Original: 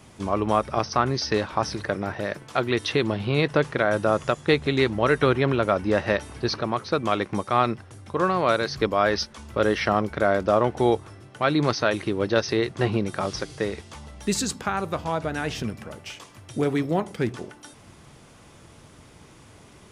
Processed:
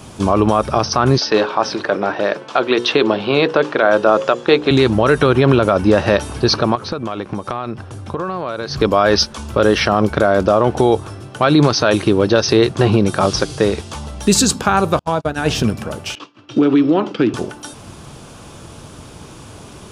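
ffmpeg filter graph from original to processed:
ffmpeg -i in.wav -filter_complex "[0:a]asettb=1/sr,asplit=3[link_01][link_02][link_03];[link_01]atrim=end=1.184[link_04];[link_02]atrim=start=1.18:end=4.71,asetpts=PTS-STARTPTS,afade=type=in:duration=0.004:curve=qsin,afade=type=out:start_time=3.526:duration=0.004:curve=qsin,highpass=290,lowpass=4300,bandreject=frequency=60:width_type=h:width=6,bandreject=frequency=120:width_type=h:width=6,bandreject=frequency=180:width_type=h:width=6,bandreject=frequency=240:width_type=h:width=6,bandreject=frequency=300:width_type=h:width=6,bandreject=frequency=360:width_type=h:width=6,bandreject=frequency=420:width_type=h:width=6,bandreject=frequency=480:width_type=h:width=6,bandreject=frequency=540:width_type=h:width=6[link_05];[link_03]atrim=start=4.706[link_06];[link_04][link_05]acrossfade=duration=0.004:curve1=hsin:curve2=qsin[link_07];[link_07][link_06]acrossfade=duration=0.004:curve1=qsin:curve2=hsin,asettb=1/sr,asplit=3[link_08][link_09][link_10];[link_08]atrim=end=6.754[link_11];[link_09]atrim=start=6.75:end=8.81,asetpts=PTS-STARTPTS,afade=type=in:duration=0.004:curve=qsin,afade=type=out:start_time=2.056:duration=0.004:curve=qsin,highshelf=frequency=5100:gain=-8,acompressor=threshold=-31dB:ratio=12:attack=3.2:release=140:knee=1:detection=peak[link_12];[link_10]atrim=start=8.806[link_13];[link_11][link_12]acrossfade=duration=0.004:curve1=hsin:curve2=qsin[link_14];[link_14][link_13]acrossfade=duration=0.004:curve1=qsin:curve2=hsin,asettb=1/sr,asplit=3[link_15][link_16][link_17];[link_15]atrim=end=14.994[link_18];[link_16]atrim=start=14.99:end=15.46,asetpts=PTS-STARTPTS,afade=type=in:duration=0.004:curve=qsin,afade=type=out:start_time=0.466:duration=0.004:curve=qsin,agate=range=-43dB:threshold=-29dB:ratio=16:release=100:detection=peak,acompressor=threshold=-28dB:ratio=2:attack=3.2:release=140:knee=1:detection=peak[link_19];[link_17]atrim=start=15.456[link_20];[link_18][link_19]acrossfade=duration=0.004:curve1=hsin:curve2=qsin[link_21];[link_21][link_20]acrossfade=duration=0.004:curve1=qsin:curve2=hsin,asettb=1/sr,asplit=3[link_22][link_23][link_24];[link_22]atrim=end=16.154[link_25];[link_23]atrim=start=16.15:end=17.34,asetpts=PTS-STARTPTS,afade=type=in:duration=0.004:curve=qsin,afade=type=out:start_time=1.186:duration=0.004:curve=qsin,agate=range=-33dB:threshold=-39dB:ratio=3:release=100:detection=peak,highpass=frequency=140:width=0.5412,highpass=frequency=140:width=1.3066,equalizer=frequency=170:width_type=q:width=4:gain=-8,equalizer=frequency=300:width_type=q:width=4:gain=10,equalizer=frequency=700:width_type=q:width=4:gain=-4,equalizer=frequency=1300:width_type=q:width=4:gain=5,equalizer=frequency=2800:width_type=q:width=4:gain=7,lowpass=frequency=5000:width=0.5412,lowpass=frequency=5000:width=1.3066,acompressor=threshold=-22dB:ratio=5:attack=3.2:release=140:knee=1:detection=peak[link_26];[link_24]atrim=start=17.336[link_27];[link_25][link_26]acrossfade=duration=0.004:curve1=hsin:curve2=qsin[link_28];[link_28][link_27]acrossfade=duration=0.004:curve1=qsin:curve2=hsin,equalizer=frequency=2000:width=4.4:gain=-9,alimiter=level_in=14dB:limit=-1dB:release=50:level=0:latency=1,volume=-1dB" out.wav

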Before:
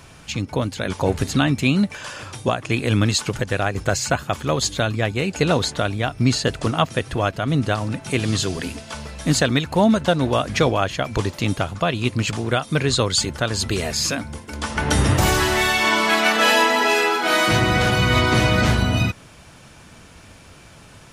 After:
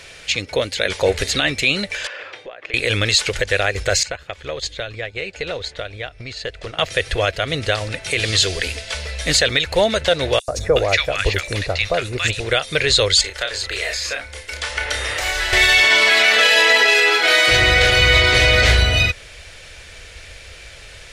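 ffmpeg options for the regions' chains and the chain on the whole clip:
ffmpeg -i in.wav -filter_complex "[0:a]asettb=1/sr,asplit=3[link_01][link_02][link_03];[link_01]atrim=end=2.074[link_04];[link_02]atrim=start=2.07:end=2.74,asetpts=PTS-STARTPTS,afade=type=in:duration=0.004:curve=qsin,afade=type=out:start_time=0.666:duration=0.004:curve=qsin,highpass=330,lowpass=2200,acompressor=threshold=-34dB:ratio=8:attack=3.2:release=140:knee=1:detection=peak[link_05];[link_03]atrim=start=2.736[link_06];[link_04][link_05]acrossfade=duration=0.004:curve1=hsin:curve2=qsin[link_07];[link_07][link_06]acrossfade=duration=0.004:curve1=qsin:curve2=hsin,asettb=1/sr,asplit=3[link_08][link_09][link_10];[link_08]atrim=end=4.034[link_11];[link_09]atrim=start=4.03:end=6.79,asetpts=PTS-STARTPTS,afade=type=in:duration=0.004:curve=qsin,afade=type=out:start_time=2.756:duration=0.004:curve=qsin,aemphasis=mode=reproduction:type=50kf,acompressor=threshold=-26dB:ratio=4:attack=3.2:release=140:knee=1:detection=peak,agate=range=-10dB:threshold=-31dB:ratio=16:release=100:detection=peak[link_12];[link_10]atrim=start=6.786[link_13];[link_11][link_12]acrossfade=duration=0.004:curve1=hsin:curve2=qsin[link_14];[link_14][link_13]acrossfade=duration=0.004:curve1=qsin:curve2=hsin,asettb=1/sr,asplit=3[link_15][link_16][link_17];[link_15]atrim=end=10.394[link_18];[link_16]atrim=start=10.39:end=12.4,asetpts=PTS-STARTPTS,afade=type=in:duration=0.004:curve=qsin,afade=type=out:start_time=2.006:duration=0.004:curve=qsin,bandreject=frequency=3200:width=8.9,acrossover=split=1200|5700[link_19][link_20][link_21];[link_19]adelay=90[link_22];[link_20]adelay=370[link_23];[link_22][link_23][link_21]amix=inputs=3:normalize=0,atrim=end_sample=88641[link_24];[link_17]atrim=start=12.396[link_25];[link_18][link_24]acrossfade=duration=0.004:curve1=hsin:curve2=qsin[link_26];[link_26][link_25]acrossfade=duration=0.004:curve1=qsin:curve2=hsin,asettb=1/sr,asplit=3[link_27][link_28][link_29];[link_27]atrim=end=13.214[link_30];[link_28]atrim=start=13.21:end=15.53,asetpts=PTS-STARTPTS,afade=type=in:duration=0.004:curve=qsin,afade=type=out:start_time=2.316:duration=0.004:curve=qsin,asplit=2[link_31][link_32];[link_32]adelay=31,volume=-5dB[link_33];[link_31][link_33]amix=inputs=2:normalize=0,atrim=end_sample=102312,acrossover=split=250|860|1900[link_34][link_35][link_36][link_37];[link_34]acompressor=threshold=-32dB:ratio=3[link_38];[link_35]acompressor=threshold=-28dB:ratio=3[link_39];[link_36]acompressor=threshold=-31dB:ratio=3[link_40];[link_37]acompressor=threshold=-37dB:ratio=3[link_41];[link_38][link_39][link_40][link_41]amix=inputs=4:normalize=0,equalizer=frequency=150:width_type=o:width=3:gain=-13[link_42];[link_29]atrim=start=15.526[link_43];[link_30][link_42]acrossfade=duration=0.004:curve1=hsin:curve2=qsin[link_44];[link_44][link_43]acrossfade=duration=0.004:curve1=qsin:curve2=hsin,equalizer=frequency=125:width_type=o:width=1:gain=-6,equalizer=frequency=250:width_type=o:width=1:gain=-8,equalizer=frequency=500:width_type=o:width=1:gain=11,equalizer=frequency=1000:width_type=o:width=1:gain=-7,equalizer=frequency=2000:width_type=o:width=1:gain=12,equalizer=frequency=4000:width_type=o:width=1:gain=9,equalizer=frequency=8000:width_type=o:width=1:gain=5,alimiter=limit=-3.5dB:level=0:latency=1:release=22,asubboost=boost=5.5:cutoff=80,volume=-1dB" out.wav

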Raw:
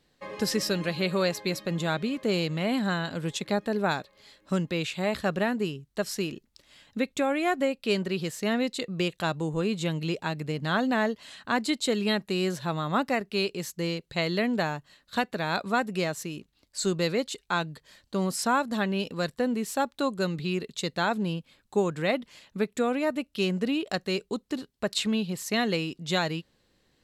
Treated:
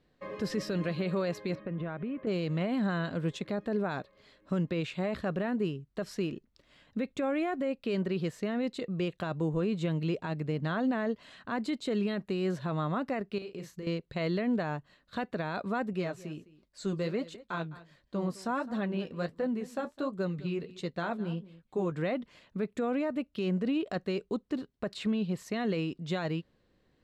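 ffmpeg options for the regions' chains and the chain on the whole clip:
ffmpeg -i in.wav -filter_complex "[0:a]asettb=1/sr,asplit=3[link_01][link_02][link_03];[link_01]atrim=end=1.554[link_04];[link_02]atrim=start=1.55:end=2.27,asetpts=PTS-STARTPTS,afade=type=in:duration=0.004:curve=qsin,afade=type=out:start_time=0.716:duration=0.004:curve=qsin,lowpass=frequency=2600:width=0.5412,lowpass=frequency=2600:width=1.3066,acompressor=threshold=-31dB:ratio=10:attack=3.2:release=140:knee=1:detection=peak[link_05];[link_03]atrim=start=2.266[link_06];[link_04][link_05]acrossfade=duration=0.004:curve1=hsin:curve2=qsin[link_07];[link_07][link_06]acrossfade=duration=0.004:curve1=qsin:curve2=hsin,asettb=1/sr,asplit=3[link_08][link_09][link_10];[link_08]atrim=end=13.384[link_11];[link_09]atrim=start=13.38:end=13.87,asetpts=PTS-STARTPTS,afade=type=in:duration=0.004:curve=qsin,afade=type=out:start_time=0.486:duration=0.004:curve=qsin,acompressor=threshold=-36dB:ratio=10:attack=3.2:release=140:knee=1:detection=peak,asplit=2[link_12][link_13];[link_13]adelay=38,volume=-7dB[link_14];[link_12][link_14]amix=inputs=2:normalize=0,atrim=end_sample=21609[link_15];[link_10]atrim=start=13.866[link_16];[link_11][link_15]acrossfade=duration=0.004:curve1=hsin:curve2=qsin[link_17];[link_17][link_16]acrossfade=duration=0.004:curve1=qsin:curve2=hsin,asettb=1/sr,asplit=3[link_18][link_19][link_20];[link_18]atrim=end=15.934[link_21];[link_19]atrim=start=15.93:end=21.92,asetpts=PTS-STARTPTS,afade=type=in:duration=0.004:curve=qsin,afade=type=out:start_time=5.986:duration=0.004:curve=qsin,aecho=1:1:208:0.112,atrim=end_sample=264159,flanger=delay=5.1:depth=8.3:regen=-45:speed=1.4:shape=sinusoidal[link_22];[link_20]atrim=start=21.916[link_23];[link_21][link_22]acrossfade=duration=0.004:curve1=hsin:curve2=qsin[link_24];[link_24][link_23]acrossfade=duration=0.004:curve1=qsin:curve2=hsin,alimiter=limit=-21.5dB:level=0:latency=1:release=20,lowpass=frequency=1400:poles=1,bandreject=frequency=840:width=12" out.wav

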